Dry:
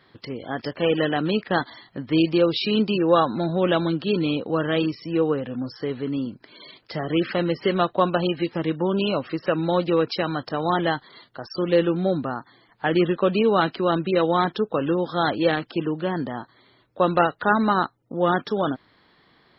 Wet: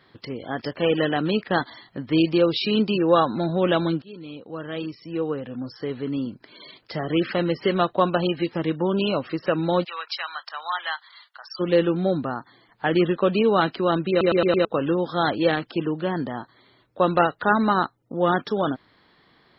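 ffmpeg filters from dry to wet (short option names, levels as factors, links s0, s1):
-filter_complex "[0:a]asplit=3[s0][s1][s2];[s0]afade=t=out:st=9.83:d=0.02[s3];[s1]highpass=f=990:w=0.5412,highpass=f=990:w=1.3066,afade=t=in:st=9.83:d=0.02,afade=t=out:st=11.59:d=0.02[s4];[s2]afade=t=in:st=11.59:d=0.02[s5];[s3][s4][s5]amix=inputs=3:normalize=0,asplit=7[s6][s7][s8][s9][s10][s11][s12];[s6]atrim=end=4.02,asetpts=PTS-STARTPTS,afade=t=out:st=4.016:d=0.004:c=hsin:silence=0.0794328[s13];[s7]atrim=start=4.02:end=14.212,asetpts=PTS-STARTPTS,afade=t=in:d=2.27:silence=0.0794328[s14];[s8]atrim=start=14.098:end=14.212[s15];[s9]atrim=start=14.098:end=14.212[s16];[s10]atrim=start=14.098:end=14.212[s17];[s11]atrim=start=14.098:end=14.212[s18];[s12]atrim=start=14.648[s19];[s13][s14]concat=n=2:v=0:a=1[s20];[s20][s15]acrossfade=d=0.004:c1=hsin:c2=hsin[s21];[s21][s16]acrossfade=d=0.004:c1=hsin:c2=hsin[s22];[s22][s17]acrossfade=d=0.004:c1=hsin:c2=hsin[s23];[s23][s18]acrossfade=d=0.004:c1=hsin:c2=hsin[s24];[s24][s19]acrossfade=d=0.004:c1=hsin:c2=hsin"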